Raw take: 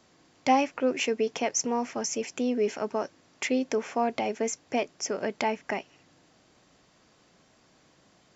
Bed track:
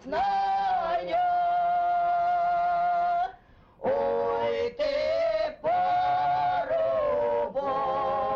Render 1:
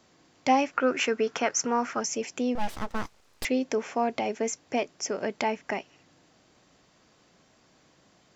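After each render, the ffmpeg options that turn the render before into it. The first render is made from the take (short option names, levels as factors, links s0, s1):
-filter_complex "[0:a]asettb=1/sr,asplit=3[s0][s1][s2];[s0]atrim=end=0.734[s3];[s1]atrim=start=0.73:end=2,asetpts=PTS-STARTPTS,afade=t=in:d=0.004:c=qsin,afade=t=out:st=1.266:d=0.004:c=qsin,equalizer=f=1400:t=o:w=0.62:g=14.5[s4];[s2]atrim=start=1.996[s5];[s3][s4]acrossfade=d=0.004:c1=hsin:c2=qsin[s6];[s6][s5]acrossfade=d=0.004:c1=qsin:c2=hsin,asettb=1/sr,asplit=3[s7][s8][s9];[s7]atrim=end=2.554[s10];[s8]atrim=start=2.55:end=3.45,asetpts=PTS-STARTPTS,afade=t=in:d=0.004:c=qsin,afade=t=out:st=0.896:d=0.004:c=qsin,aeval=exprs='abs(val(0))':c=same[s11];[s9]atrim=start=3.446[s12];[s10][s11]acrossfade=d=0.004:c1=hsin:c2=qsin[s13];[s13][s12]acrossfade=d=0.004:c1=qsin:c2=hsin"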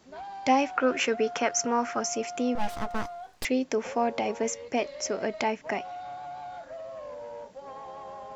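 -filter_complex "[1:a]volume=0.188[s0];[0:a][s0]amix=inputs=2:normalize=0"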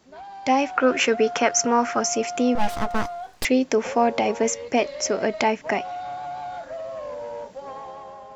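-af "dynaudnorm=f=140:g=9:m=2.24"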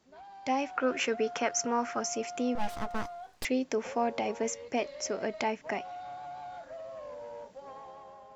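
-af "volume=0.316"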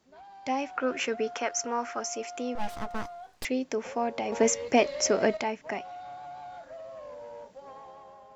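-filter_complex "[0:a]asettb=1/sr,asplit=3[s0][s1][s2];[s0]atrim=end=1.344[s3];[s1]atrim=start=1.34:end=2.59,asetpts=PTS-STARTPTS,afade=t=in:d=0.004:c=qsin,afade=t=out:st=1.246:d=0.004:c=qsin,equalizer=f=150:w=1.5:g=-13[s4];[s2]atrim=start=2.586[s5];[s3][s4]acrossfade=d=0.004:c1=hsin:c2=qsin[s6];[s6][s5]acrossfade=d=0.004:c1=qsin:c2=hsin,asplit=3[s7][s8][s9];[s7]atrim=end=4.322[s10];[s8]atrim=start=4.318:end=5.372,asetpts=PTS-STARTPTS,volume=2.82[s11];[s9]atrim=start=5.368[s12];[s10][s11]acrossfade=d=0.004:c1=hsin:c2=hsin[s13];[s13][s12]acrossfade=d=0.004:c1=hsin:c2=hsin"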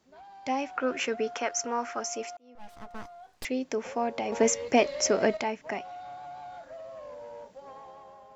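-filter_complex "[0:a]asplit=2[s0][s1];[s0]atrim=end=2.37,asetpts=PTS-STARTPTS,afade=t=out:st=2.366:d=0.004:c=hsin[s2];[s1]atrim=start=2.37,asetpts=PTS-STARTPTS,afade=t=in:d=1.37[s3];[s2][s3]concat=n=2:v=0:a=1"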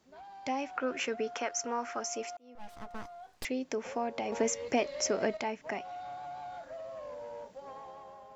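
-af "acompressor=threshold=0.0141:ratio=1.5"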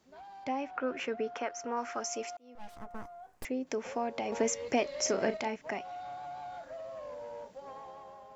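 -filter_complex "[0:a]asettb=1/sr,asplit=3[s0][s1][s2];[s0]atrim=end=0.444[s3];[s1]atrim=start=0.44:end=1.77,asetpts=PTS-STARTPTS,afade=t=in:d=0.004:c=qsin,afade=t=out:st=1.326:d=0.004:c=qsin,aemphasis=mode=reproduction:type=75kf[s4];[s2]atrim=start=1.766[s5];[s3][s4]acrossfade=d=0.004:c1=hsin:c2=qsin[s6];[s6][s5]acrossfade=d=0.004:c1=qsin:c2=hsin,asettb=1/sr,asplit=3[s7][s8][s9];[s7]atrim=end=2.774[s10];[s8]atrim=start=2.77:end=3.67,asetpts=PTS-STARTPTS,afade=t=in:d=0.004:c=qsin,afade=t=out:st=0.896:d=0.004:c=qsin,equalizer=f=4000:t=o:w=1.6:g=-11.5[s11];[s9]atrim=start=3.666[s12];[s10][s11]acrossfade=d=0.004:c1=hsin:c2=qsin[s13];[s13][s12]acrossfade=d=0.004:c1=qsin:c2=hsin,asettb=1/sr,asplit=3[s14][s15][s16];[s14]atrim=end=5.024[s17];[s15]atrim=start=5.02:end=5.56,asetpts=PTS-STARTPTS,afade=t=in:d=0.004:c=qsin,afade=t=out:st=0.536:d=0.004:c=qsin,asplit=2[s18][s19];[s19]adelay=36,volume=0.355[s20];[s18][s20]amix=inputs=2:normalize=0,atrim=end_sample=23814[s21];[s16]atrim=start=5.556[s22];[s17][s21]acrossfade=d=0.004:c1=hsin:c2=qsin[s23];[s23][s22]acrossfade=d=0.004:c1=qsin:c2=hsin"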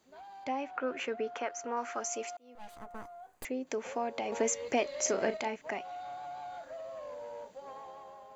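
-af "bass=f=250:g=-5,treble=f=4000:g=3,bandreject=f=5400:w=6.2"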